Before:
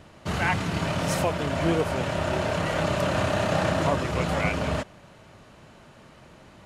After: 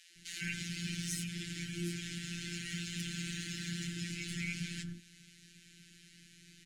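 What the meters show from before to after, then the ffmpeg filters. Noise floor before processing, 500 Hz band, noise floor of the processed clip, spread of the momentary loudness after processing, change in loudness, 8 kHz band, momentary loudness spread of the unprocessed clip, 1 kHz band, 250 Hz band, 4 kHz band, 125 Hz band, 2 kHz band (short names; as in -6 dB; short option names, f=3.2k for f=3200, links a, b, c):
-51 dBFS, -30.0 dB, -61 dBFS, 19 LU, -13.5 dB, -3.5 dB, 3 LU, -37.0 dB, -12.5 dB, -7.0 dB, -13.5 dB, -12.5 dB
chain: -filter_complex "[0:a]equalizer=f=8k:w=0.32:g=12.5,asplit=2[a][b];[b]acompressor=threshold=-36dB:ratio=6,volume=-2dB[c];[a][c]amix=inputs=2:normalize=0,flanger=delay=10:depth=2.7:regen=-69:speed=1:shape=sinusoidal,afftfilt=real='hypot(re,im)*cos(PI*b)':imag='0':win_size=1024:overlap=0.75,asoftclip=type=tanh:threshold=-13dB,acrossover=split=380|1300[d][e][f];[e]adelay=100[g];[d]adelay=160[h];[h][g][f]amix=inputs=3:normalize=0,asoftclip=type=hard:threshold=-20dB,asuperstop=centerf=750:order=12:qfactor=0.59,volume=-6dB"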